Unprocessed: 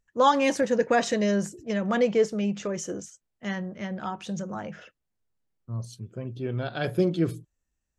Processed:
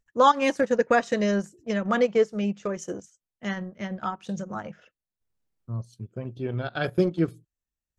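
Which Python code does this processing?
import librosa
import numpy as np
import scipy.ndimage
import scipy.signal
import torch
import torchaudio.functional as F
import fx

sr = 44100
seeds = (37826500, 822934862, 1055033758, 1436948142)

y = fx.dynamic_eq(x, sr, hz=1300.0, q=2.8, threshold_db=-45.0, ratio=4.0, max_db=5)
y = fx.transient(y, sr, attack_db=2, sustain_db=-11)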